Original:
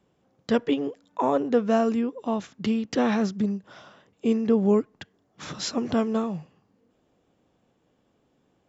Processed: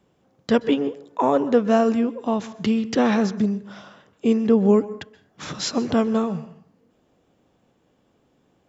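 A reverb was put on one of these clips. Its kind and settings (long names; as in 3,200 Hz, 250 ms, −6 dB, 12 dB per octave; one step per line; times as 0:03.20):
dense smooth reverb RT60 0.57 s, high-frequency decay 0.55×, pre-delay 115 ms, DRR 16.5 dB
level +4 dB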